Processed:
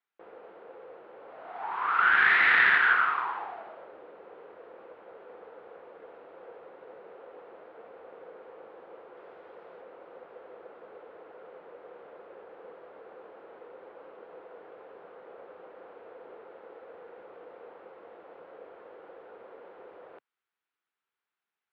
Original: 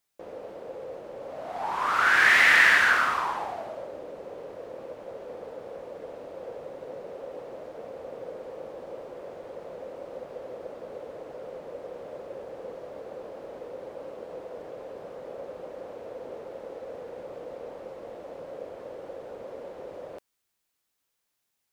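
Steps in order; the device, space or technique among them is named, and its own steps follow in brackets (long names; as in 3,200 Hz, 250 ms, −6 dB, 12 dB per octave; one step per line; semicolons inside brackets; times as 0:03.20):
guitar amplifier (tube saturation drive 9 dB, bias 0.65; bass and treble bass −11 dB, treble −14 dB; loudspeaker in its box 85–3,900 Hz, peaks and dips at 130 Hz −8 dB, 260 Hz −6 dB, 580 Hz −10 dB, 1,400 Hz +5 dB)
0:09.17–0:09.81: high-shelf EQ 5,300 Hz +9 dB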